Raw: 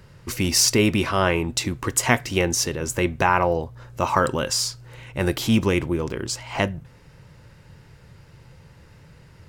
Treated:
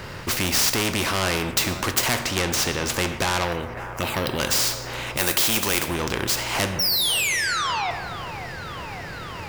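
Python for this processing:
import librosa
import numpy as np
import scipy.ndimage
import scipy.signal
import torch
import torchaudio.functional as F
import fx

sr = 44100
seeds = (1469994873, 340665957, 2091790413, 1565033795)

p1 = scipy.signal.medfilt(x, 5)
p2 = fx.high_shelf(p1, sr, hz=10000.0, db=-11.5, at=(2.19, 2.94))
p3 = fx.env_phaser(p2, sr, low_hz=580.0, high_hz=1400.0, full_db=-16.0, at=(3.53, 4.4))
p4 = fx.rider(p3, sr, range_db=4, speed_s=0.5)
p5 = p3 + (p4 * 10.0 ** (-1.5 / 20.0))
p6 = fx.riaa(p5, sr, side='recording', at=(5.17, 5.88))
p7 = fx.spec_paint(p6, sr, seeds[0], shape='fall', start_s=6.79, length_s=1.12, low_hz=680.0, high_hz=5700.0, level_db=-12.0)
p8 = 10.0 ** (-14.0 / 20.0) * np.tanh(p7 / 10.0 ** (-14.0 / 20.0))
p9 = p8 + fx.echo_wet_bandpass(p8, sr, ms=551, feedback_pct=72, hz=860.0, wet_db=-21.0, dry=0)
p10 = fx.rev_plate(p9, sr, seeds[1], rt60_s=0.8, hf_ratio=0.7, predelay_ms=0, drr_db=12.0)
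p11 = fx.spectral_comp(p10, sr, ratio=2.0)
y = p11 * 10.0 ** (5.0 / 20.0)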